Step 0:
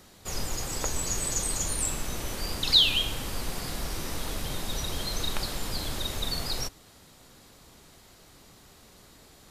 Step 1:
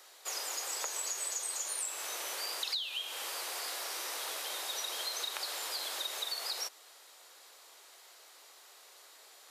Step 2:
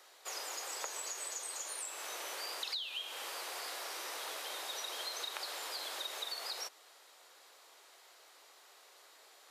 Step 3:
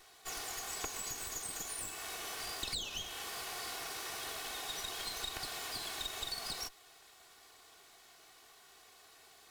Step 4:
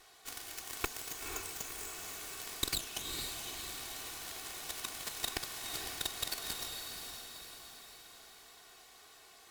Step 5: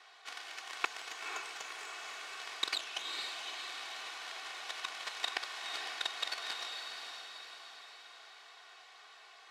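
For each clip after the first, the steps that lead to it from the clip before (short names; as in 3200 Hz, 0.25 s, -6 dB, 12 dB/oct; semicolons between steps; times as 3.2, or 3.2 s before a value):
Bessel high-pass 700 Hz, order 8; compressor 16:1, threshold -33 dBFS, peak gain reduction 18.5 dB
high shelf 4200 Hz -6 dB; gain -1 dB
minimum comb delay 2.7 ms; gain +2 dB
added harmonics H 5 -24 dB, 7 -12 dB, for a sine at -22.5 dBFS; diffused feedback echo 0.496 s, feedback 52%, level -4 dB; gain +7 dB
BPF 760–3600 Hz; gain +5.5 dB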